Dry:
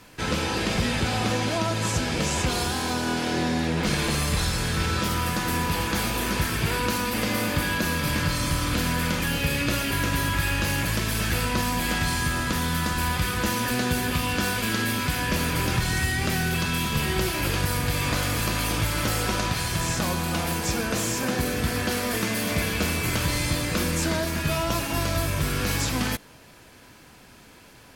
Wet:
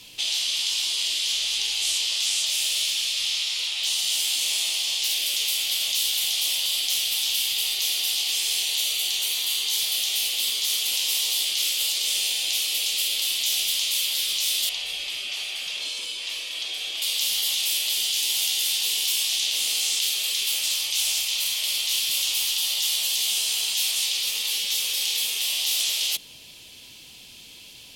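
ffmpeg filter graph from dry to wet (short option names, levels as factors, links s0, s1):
-filter_complex "[0:a]asettb=1/sr,asplit=3[s0][s1][s2];[s0]atrim=end=8.624[s3];[s1]atrim=start=8.62:end=9.73,asetpts=PTS-STARTPTS,afade=t=in:d=0.004:c=qsin,afade=t=out:st=1.106:d=0.004:c=qsin,bandreject=f=5100:w=10,volume=7.94,asoftclip=hard,volume=0.126,aeval=exprs='val(0)+0.0141*(sin(2*PI*50*n/s)+sin(2*PI*2*50*n/s)/2+sin(2*PI*3*50*n/s)/3+sin(2*PI*4*50*n/s)/4+sin(2*PI*5*50*n/s)/5)':c=same[s4];[s2]atrim=start=9.726[s5];[s3][s4]acrossfade=d=0.004:c1=hsin:c2=qsin[s6];[s6][s5]acrossfade=d=0.004:c1=qsin:c2=hsin,asettb=1/sr,asplit=3[s7][s8][s9];[s7]atrim=end=14.694[s10];[s8]atrim=start=14.69:end=17.02,asetpts=PTS-STARTPTS,afade=t=in:d=0.004:c=qsin,afade=t=out:st=2.326:d=0.004:c=qsin,lowpass=10000,highshelf=f=2300:g=-11.5[s11];[s9]atrim=start=17.016[s12];[s10][s11]acrossfade=d=0.004:c1=hsin:c2=qsin[s13];[s13][s12]acrossfade=d=0.004:c1=qsin:c2=hsin,afftfilt=real='re*lt(hypot(re,im),0.0562)':imag='im*lt(hypot(re,im),0.0562)':win_size=1024:overlap=0.75,highshelf=f=2200:t=q:w=3:g=12.5,volume=0.501"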